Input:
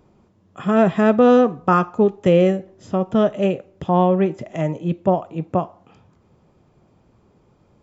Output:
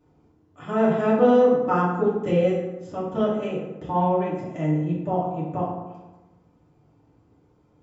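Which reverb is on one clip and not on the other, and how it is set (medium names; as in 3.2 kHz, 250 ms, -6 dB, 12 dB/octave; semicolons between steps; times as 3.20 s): FDN reverb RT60 1.1 s, low-frequency decay 1.2×, high-frequency decay 0.55×, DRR -8.5 dB; trim -14.5 dB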